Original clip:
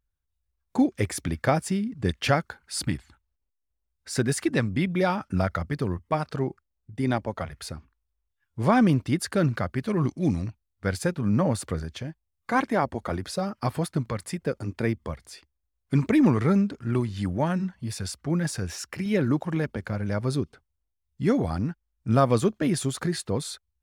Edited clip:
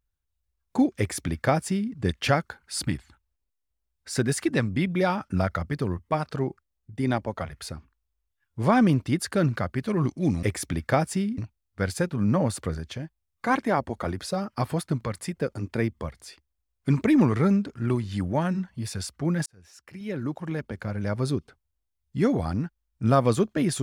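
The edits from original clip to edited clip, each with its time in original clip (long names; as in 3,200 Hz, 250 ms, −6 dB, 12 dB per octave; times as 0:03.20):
0:00.98–0:01.93: duplicate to 0:10.43
0:18.51–0:20.22: fade in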